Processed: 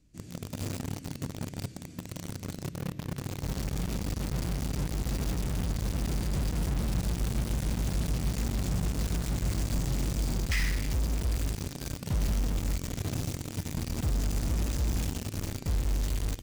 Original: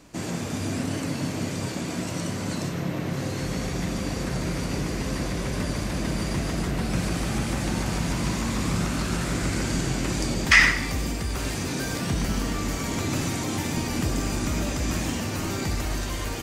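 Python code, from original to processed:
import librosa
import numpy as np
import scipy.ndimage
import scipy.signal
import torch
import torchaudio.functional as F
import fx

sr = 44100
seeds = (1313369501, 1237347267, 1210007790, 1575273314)

p1 = fx.tone_stack(x, sr, knobs='10-0-1')
p2 = fx.quant_companded(p1, sr, bits=2)
p3 = p1 + (p2 * librosa.db_to_amplitude(-6.5))
y = p3 * librosa.db_to_amplitude(1.5)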